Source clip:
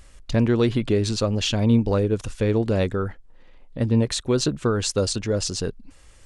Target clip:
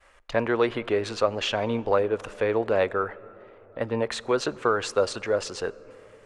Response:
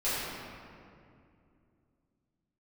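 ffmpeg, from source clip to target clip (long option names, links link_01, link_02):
-filter_complex "[0:a]acrossover=split=490 2400:gain=0.0794 1 0.141[link_01][link_02][link_03];[link_01][link_02][link_03]amix=inputs=3:normalize=0,acontrast=58,agate=range=-33dB:threshold=-54dB:ratio=3:detection=peak,asplit=2[link_04][link_05];[1:a]atrim=start_sample=2205,asetrate=22932,aresample=44100[link_06];[link_05][link_06]afir=irnorm=-1:irlink=0,volume=-34dB[link_07];[link_04][link_07]amix=inputs=2:normalize=0"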